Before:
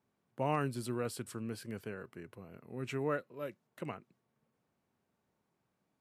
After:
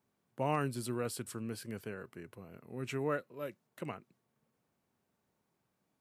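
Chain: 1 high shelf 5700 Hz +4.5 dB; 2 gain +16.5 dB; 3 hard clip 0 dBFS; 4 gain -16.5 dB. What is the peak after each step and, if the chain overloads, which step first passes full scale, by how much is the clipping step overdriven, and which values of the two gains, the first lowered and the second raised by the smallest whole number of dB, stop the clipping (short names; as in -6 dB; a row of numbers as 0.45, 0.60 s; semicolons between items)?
-19.0, -2.5, -2.5, -19.0 dBFS; no overload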